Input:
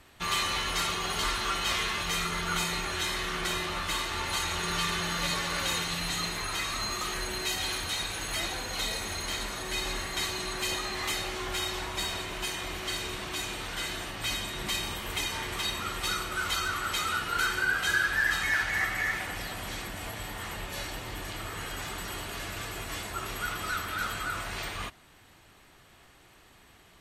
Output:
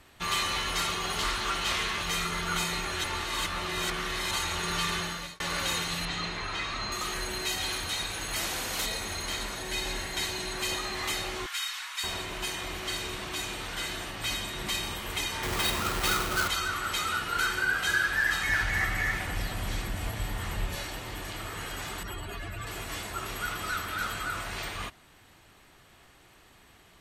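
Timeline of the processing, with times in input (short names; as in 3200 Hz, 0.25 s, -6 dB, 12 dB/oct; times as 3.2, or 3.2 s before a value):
1.17–2.03 Doppler distortion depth 0.2 ms
3.04–4.31 reverse
4.97–5.4 fade out
6.05–6.92 LPF 4300 Hz
8.36–8.86 spectral compressor 2:1
9.55–10.56 notch 1200 Hz, Q 7
11.46–12.04 HPF 1200 Hz 24 dB/oct
15.43–16.48 half-waves squared off
18.49–20.76 low shelf 150 Hz +12 dB
22.03–22.67 spectral contrast raised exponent 1.9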